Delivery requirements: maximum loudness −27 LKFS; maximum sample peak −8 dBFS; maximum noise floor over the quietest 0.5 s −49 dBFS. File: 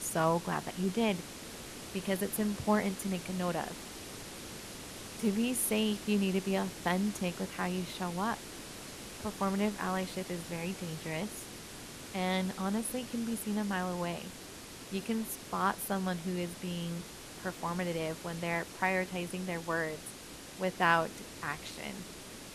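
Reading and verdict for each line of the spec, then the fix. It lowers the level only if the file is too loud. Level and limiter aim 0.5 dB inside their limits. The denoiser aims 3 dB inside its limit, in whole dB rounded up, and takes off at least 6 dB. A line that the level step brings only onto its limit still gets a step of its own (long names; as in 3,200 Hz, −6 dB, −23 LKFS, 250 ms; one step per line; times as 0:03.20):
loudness −35.0 LKFS: in spec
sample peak −12.5 dBFS: in spec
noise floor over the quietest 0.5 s −48 dBFS: out of spec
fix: broadband denoise 6 dB, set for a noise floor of −48 dBFS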